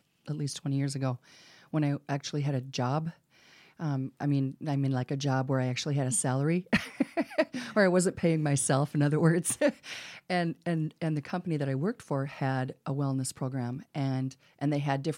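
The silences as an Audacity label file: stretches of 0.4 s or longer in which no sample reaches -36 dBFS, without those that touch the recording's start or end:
1.150000	1.740000	silence
3.100000	3.800000	silence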